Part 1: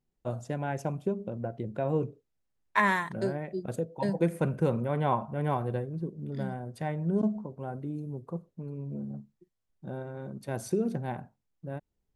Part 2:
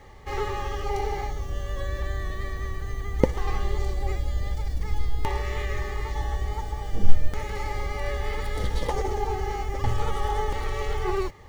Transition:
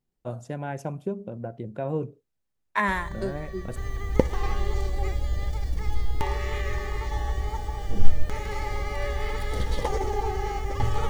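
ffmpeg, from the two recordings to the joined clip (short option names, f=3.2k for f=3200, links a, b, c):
-filter_complex "[1:a]asplit=2[a][b];[0:a]apad=whole_dur=11.09,atrim=end=11.09,atrim=end=3.762[c];[b]atrim=start=2.798:end=10.13[d];[a]atrim=start=1.92:end=2.8,asetpts=PTS-STARTPTS,volume=-7.5dB,afade=t=in:d=0.004:c=hsin,afade=t=out:st=0.876:d=0.004:c=hsin,adelay=2880[e];[c][d]acrossfade=d=0.004:c1=hsin:c2=hsin[f];[f][e]amix=inputs=2:normalize=0"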